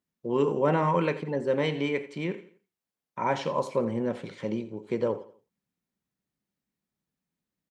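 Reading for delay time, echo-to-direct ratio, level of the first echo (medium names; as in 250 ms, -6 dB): 85 ms, -15.5 dB, -16.0 dB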